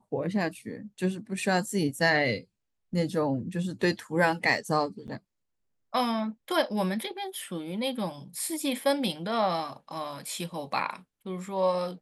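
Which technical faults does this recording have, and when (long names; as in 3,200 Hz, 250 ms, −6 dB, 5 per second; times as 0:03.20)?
0:05.07–0:05.08: drop-out 9.2 ms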